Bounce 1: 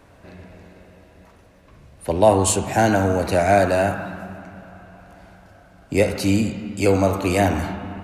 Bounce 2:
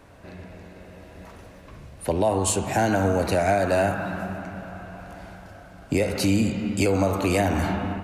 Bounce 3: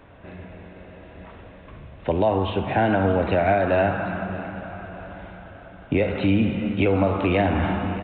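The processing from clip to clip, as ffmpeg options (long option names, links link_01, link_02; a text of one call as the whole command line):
ffmpeg -i in.wav -af "dynaudnorm=framelen=720:gausssize=3:maxgain=11.5dB,alimiter=limit=-12dB:level=0:latency=1:release=325" out.wav
ffmpeg -i in.wav -af "aecho=1:1:622|1244|1866|2488:0.141|0.0622|0.0273|0.012,aresample=8000,aresample=44100,volume=1.5dB" out.wav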